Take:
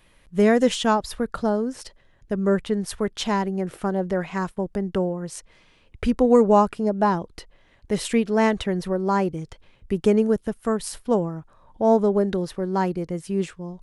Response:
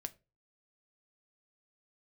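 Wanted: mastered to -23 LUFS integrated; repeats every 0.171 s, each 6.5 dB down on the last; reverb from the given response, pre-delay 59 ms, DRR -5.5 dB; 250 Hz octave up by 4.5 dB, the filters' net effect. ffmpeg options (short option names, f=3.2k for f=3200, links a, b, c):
-filter_complex "[0:a]equalizer=f=250:t=o:g=5.5,aecho=1:1:171|342|513|684|855|1026:0.473|0.222|0.105|0.0491|0.0231|0.0109,asplit=2[a][b];[1:a]atrim=start_sample=2205,adelay=59[c];[b][c]afir=irnorm=-1:irlink=0,volume=8.5dB[d];[a][d]amix=inputs=2:normalize=0,volume=-11dB"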